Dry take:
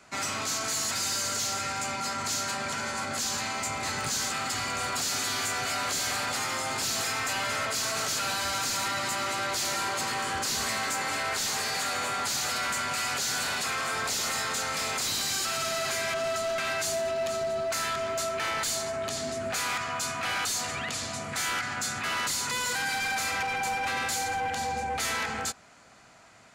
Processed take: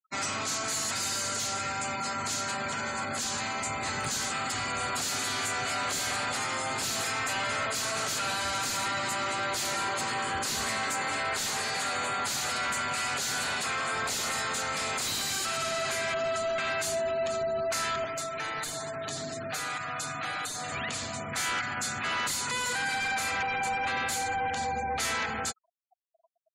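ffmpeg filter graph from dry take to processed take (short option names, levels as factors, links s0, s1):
-filter_complex "[0:a]asettb=1/sr,asplit=3[s0][s1][s2];[s0]atrim=end=18.044[s3];[s1]atrim=start=18.04:end=20.72,asetpts=PTS-STARTPTS,afade=t=in:d=0.004:c=qsin,afade=t=out:st=2.676:d=0.004:c=qsin,adynamicequalizer=threshold=0.00282:dfrequency=3900:dqfactor=7.8:tfrequency=3900:tqfactor=7.8:attack=5:release=100:ratio=0.375:range=2:mode=boostabove:tftype=bell,aecho=1:1:6.6:0.57,atrim=end_sample=118188,acrossover=split=1800|7600[s4][s5][s6];[s4]acompressor=threshold=0.02:ratio=4[s7];[s5]acompressor=threshold=0.0112:ratio=4[s8];[s6]acompressor=threshold=0.0112:ratio=4[s9];[s7][s8][s9]amix=inputs=3:normalize=0[s10];[s2]atrim=start=20.716[s11];[s3][s10]acrossfade=d=0.004:c1=hsin:c2=qsin[s12];[s12][s11]acrossfade=d=0.004:c1=qsin:c2=hsin,adynamicequalizer=threshold=0.00447:dfrequency=5400:dqfactor=2:tfrequency=5400:tqfactor=2:attack=5:release=100:ratio=0.375:range=2:mode=cutabove:tftype=bell,afftfilt=real='re*gte(hypot(re,im),0.01)':imag='im*gte(hypot(re,im),0.01)':win_size=1024:overlap=0.75"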